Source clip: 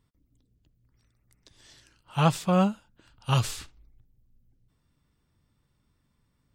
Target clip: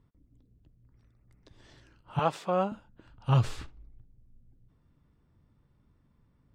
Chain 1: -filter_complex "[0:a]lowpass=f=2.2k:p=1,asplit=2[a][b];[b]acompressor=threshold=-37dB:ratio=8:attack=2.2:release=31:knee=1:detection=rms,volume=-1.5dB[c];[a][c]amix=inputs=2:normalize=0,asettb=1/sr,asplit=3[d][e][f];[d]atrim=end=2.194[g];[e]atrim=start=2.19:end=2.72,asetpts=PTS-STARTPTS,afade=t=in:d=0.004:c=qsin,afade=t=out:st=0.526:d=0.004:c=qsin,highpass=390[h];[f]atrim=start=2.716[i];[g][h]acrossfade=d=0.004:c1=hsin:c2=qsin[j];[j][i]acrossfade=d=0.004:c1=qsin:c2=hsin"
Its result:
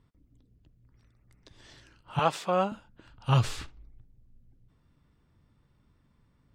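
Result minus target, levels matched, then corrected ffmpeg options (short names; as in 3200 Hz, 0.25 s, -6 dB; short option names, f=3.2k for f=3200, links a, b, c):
2000 Hz band +3.5 dB
-filter_complex "[0:a]lowpass=f=930:p=1,asplit=2[a][b];[b]acompressor=threshold=-37dB:ratio=8:attack=2.2:release=31:knee=1:detection=rms,volume=-1.5dB[c];[a][c]amix=inputs=2:normalize=0,asettb=1/sr,asplit=3[d][e][f];[d]atrim=end=2.194[g];[e]atrim=start=2.19:end=2.72,asetpts=PTS-STARTPTS,afade=t=in:d=0.004:c=qsin,afade=t=out:st=0.526:d=0.004:c=qsin,highpass=390[h];[f]atrim=start=2.716[i];[g][h]acrossfade=d=0.004:c1=hsin:c2=qsin[j];[j][i]acrossfade=d=0.004:c1=qsin:c2=hsin"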